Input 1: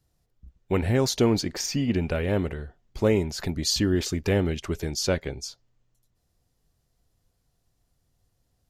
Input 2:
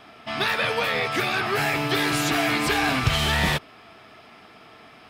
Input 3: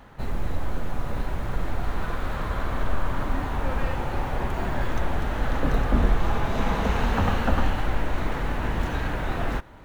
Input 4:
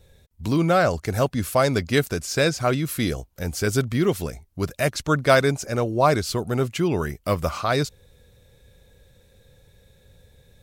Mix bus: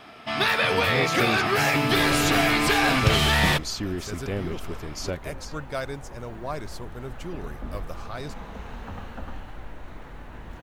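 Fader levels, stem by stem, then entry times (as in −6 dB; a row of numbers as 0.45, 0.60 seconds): −7.0, +1.5, −14.5, −14.5 decibels; 0.00, 0.00, 1.70, 0.45 seconds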